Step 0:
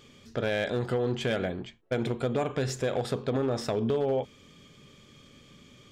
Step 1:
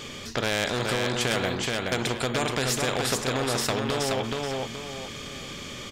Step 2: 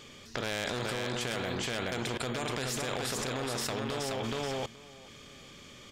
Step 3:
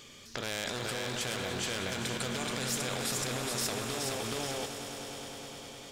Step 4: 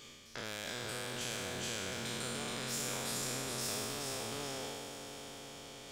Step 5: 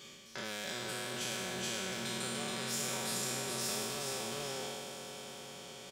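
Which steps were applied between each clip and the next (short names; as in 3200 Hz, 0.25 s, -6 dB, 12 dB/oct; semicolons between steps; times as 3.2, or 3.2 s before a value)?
on a send: feedback echo 0.425 s, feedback 16%, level -5 dB; on the sum: spectral compressor 2:1; gain +5 dB
level quantiser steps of 17 dB
high shelf 4500 Hz +8.5 dB; on a send: swelling echo 0.101 s, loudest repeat 5, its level -13.5 dB; on the sum: gain -3.5 dB
spectral trails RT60 2.38 s; reverse; upward compressor, threshold -36 dBFS; reverse; gain -9 dB
HPF 65 Hz; comb 5.3 ms, depth 62%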